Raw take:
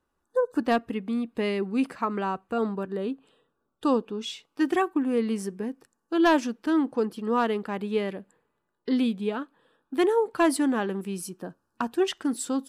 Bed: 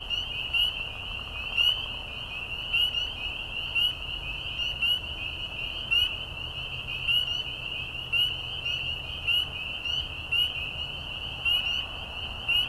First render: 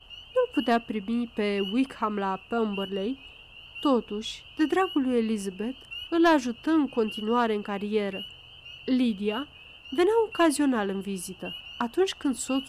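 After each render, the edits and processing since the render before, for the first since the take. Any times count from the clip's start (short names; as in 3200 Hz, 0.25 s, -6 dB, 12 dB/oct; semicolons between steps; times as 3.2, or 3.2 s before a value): add bed -14.5 dB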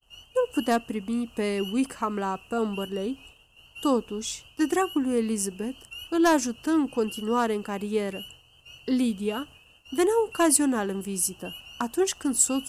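resonant high shelf 5000 Hz +11 dB, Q 1.5; expander -44 dBFS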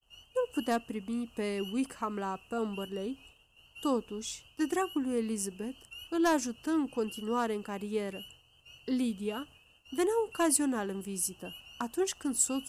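gain -6.5 dB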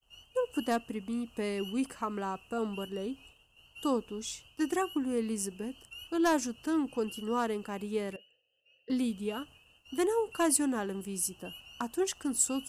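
8.16–8.9 vowel filter e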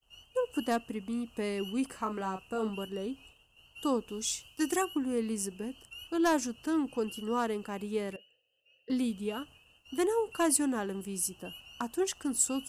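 1.89–2.7 doubler 32 ms -8 dB; 4.08–4.85 high shelf 3700 Hz +9 dB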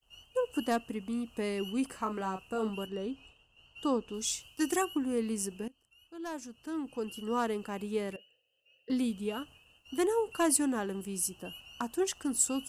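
2.86–4.14 air absorption 58 m; 5.68–7.39 fade in quadratic, from -18.5 dB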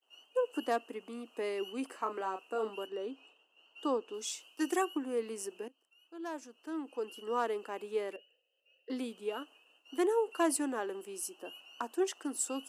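inverse Chebyshev high-pass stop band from 150 Hz, stop band 40 dB; high shelf 3400 Hz -8 dB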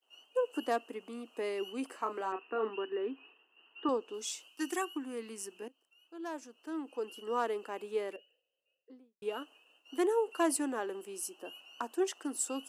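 2.32–3.89 speaker cabinet 180–2800 Hz, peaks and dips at 250 Hz +4 dB, 380 Hz +6 dB, 580 Hz -7 dB, 1100 Hz +4 dB, 1800 Hz +9 dB, 2600 Hz +5 dB; 4.48–5.62 bell 530 Hz -8.5 dB 1.2 oct; 8.06–9.22 studio fade out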